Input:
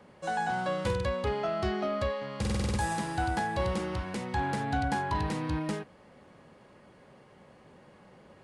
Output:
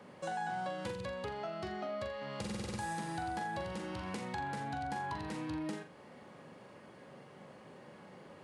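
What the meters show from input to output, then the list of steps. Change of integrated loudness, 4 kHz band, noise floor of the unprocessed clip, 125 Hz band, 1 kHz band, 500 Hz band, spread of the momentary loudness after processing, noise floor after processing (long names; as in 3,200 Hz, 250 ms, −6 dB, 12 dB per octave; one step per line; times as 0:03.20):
−8.5 dB, −7.0 dB, −57 dBFS, −11.5 dB, −7.0 dB, −9.0 dB, 16 LU, −56 dBFS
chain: high-pass filter 120 Hz 12 dB per octave
downward compressor 6 to 1, threshold −39 dBFS, peak gain reduction 12 dB
on a send: flutter between parallel walls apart 7.2 metres, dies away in 0.33 s
on the sum: level +1 dB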